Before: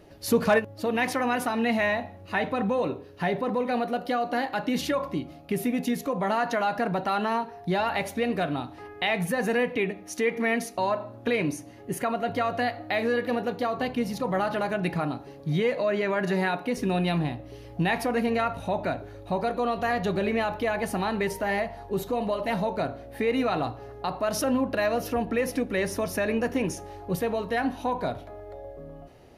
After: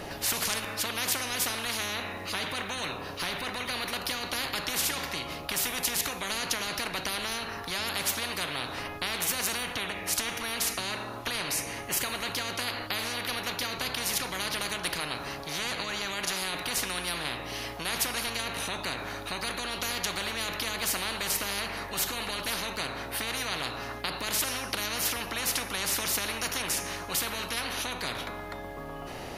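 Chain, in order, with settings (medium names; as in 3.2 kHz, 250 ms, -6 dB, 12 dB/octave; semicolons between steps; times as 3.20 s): Schroeder reverb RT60 0.92 s, combs from 28 ms, DRR 19 dB; spectrum-flattening compressor 10:1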